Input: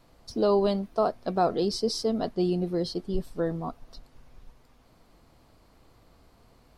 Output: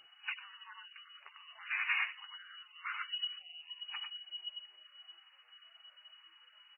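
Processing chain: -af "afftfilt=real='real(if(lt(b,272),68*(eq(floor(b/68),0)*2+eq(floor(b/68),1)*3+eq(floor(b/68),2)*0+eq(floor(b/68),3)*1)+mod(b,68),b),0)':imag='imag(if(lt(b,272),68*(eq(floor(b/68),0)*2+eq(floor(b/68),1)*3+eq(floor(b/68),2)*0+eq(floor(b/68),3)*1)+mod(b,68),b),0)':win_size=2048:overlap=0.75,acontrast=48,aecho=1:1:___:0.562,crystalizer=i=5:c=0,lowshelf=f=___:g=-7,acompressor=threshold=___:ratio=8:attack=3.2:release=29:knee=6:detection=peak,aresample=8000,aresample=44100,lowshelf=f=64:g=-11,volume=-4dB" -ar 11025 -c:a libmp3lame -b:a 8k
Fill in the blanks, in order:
97, 350, -21dB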